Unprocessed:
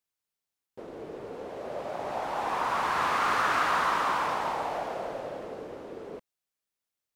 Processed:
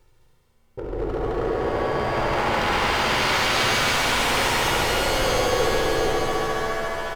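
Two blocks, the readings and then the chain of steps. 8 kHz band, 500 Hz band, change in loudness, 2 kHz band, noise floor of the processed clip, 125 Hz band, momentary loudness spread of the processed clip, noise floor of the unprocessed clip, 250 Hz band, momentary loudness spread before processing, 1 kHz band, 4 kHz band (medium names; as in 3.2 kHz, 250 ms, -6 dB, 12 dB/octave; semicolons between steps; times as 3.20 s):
+17.0 dB, +12.0 dB, +7.5 dB, +9.5 dB, -59 dBFS, +18.5 dB, 7 LU, under -85 dBFS, +13.0 dB, 17 LU, +4.5 dB, +17.0 dB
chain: tilt EQ -4.5 dB/octave; comb 2.2 ms, depth 83%; reverse; upward compressor, threshold -37 dBFS; reverse; wavefolder -26 dBFS; on a send: multi-head delay 70 ms, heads all three, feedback 61%, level -6.5 dB; on the sum: pitch-shifted reverb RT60 3.9 s, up +7 st, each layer -2 dB, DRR 2 dB; trim +2 dB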